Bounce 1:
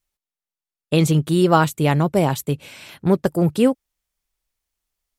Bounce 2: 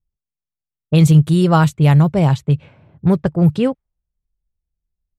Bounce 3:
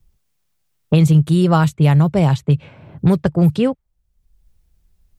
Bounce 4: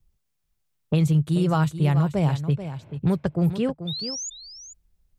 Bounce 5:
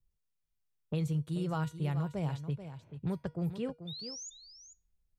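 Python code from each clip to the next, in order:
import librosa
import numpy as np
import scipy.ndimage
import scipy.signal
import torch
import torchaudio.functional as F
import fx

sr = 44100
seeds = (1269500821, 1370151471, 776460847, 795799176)

y1 = fx.low_shelf_res(x, sr, hz=190.0, db=8.0, q=1.5)
y1 = fx.env_lowpass(y1, sr, base_hz=360.0, full_db=-8.0)
y2 = fx.band_squash(y1, sr, depth_pct=70)
y2 = y2 * 10.0 ** (-1.0 / 20.0)
y3 = fx.spec_paint(y2, sr, seeds[0], shape='rise', start_s=3.87, length_s=0.43, low_hz=3500.0, high_hz=7100.0, level_db=-24.0)
y3 = y3 + 10.0 ** (-11.0 / 20.0) * np.pad(y3, (int(435 * sr / 1000.0), 0))[:len(y3)]
y3 = y3 * 10.0 ** (-8.0 / 20.0)
y4 = fx.comb_fb(y3, sr, f0_hz=480.0, decay_s=0.29, harmonics='all', damping=0.0, mix_pct=60)
y4 = y4 * 10.0 ** (-5.0 / 20.0)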